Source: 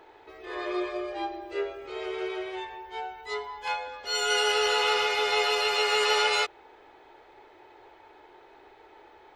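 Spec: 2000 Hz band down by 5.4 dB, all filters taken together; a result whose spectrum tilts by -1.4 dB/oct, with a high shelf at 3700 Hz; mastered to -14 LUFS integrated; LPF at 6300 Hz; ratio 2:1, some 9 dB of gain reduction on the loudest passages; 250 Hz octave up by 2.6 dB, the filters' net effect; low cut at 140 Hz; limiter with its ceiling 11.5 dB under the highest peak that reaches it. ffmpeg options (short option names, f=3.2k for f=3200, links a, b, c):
-af "highpass=140,lowpass=6.3k,equalizer=f=250:t=o:g=6,equalizer=f=2k:t=o:g=-8.5,highshelf=f=3.7k:g=3,acompressor=threshold=-39dB:ratio=2,volume=27.5dB,alimiter=limit=-6dB:level=0:latency=1"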